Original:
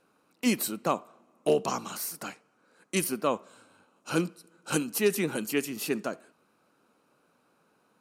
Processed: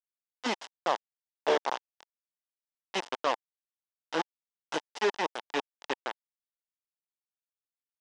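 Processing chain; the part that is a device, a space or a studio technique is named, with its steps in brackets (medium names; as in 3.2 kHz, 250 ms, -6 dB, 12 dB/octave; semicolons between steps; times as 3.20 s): hand-held game console (bit crusher 4-bit; cabinet simulation 470–4900 Hz, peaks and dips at 880 Hz +6 dB, 1.3 kHz -4 dB, 2.4 kHz -8 dB, 4.3 kHz -8 dB)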